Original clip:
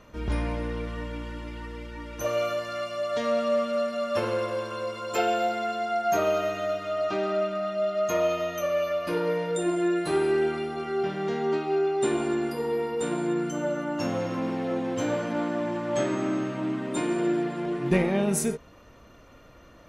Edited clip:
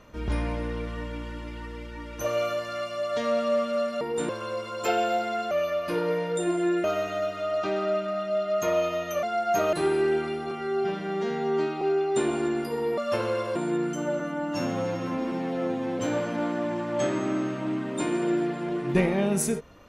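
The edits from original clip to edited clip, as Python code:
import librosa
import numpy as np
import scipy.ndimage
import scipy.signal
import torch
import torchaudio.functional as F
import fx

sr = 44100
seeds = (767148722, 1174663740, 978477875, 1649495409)

y = fx.edit(x, sr, fx.swap(start_s=4.01, length_s=0.58, other_s=12.84, other_length_s=0.28),
    fx.swap(start_s=5.81, length_s=0.5, other_s=8.7, other_length_s=1.33),
    fx.stretch_span(start_s=10.81, length_s=0.87, factor=1.5),
    fx.stretch_span(start_s=13.76, length_s=1.2, factor=1.5), tone=tone)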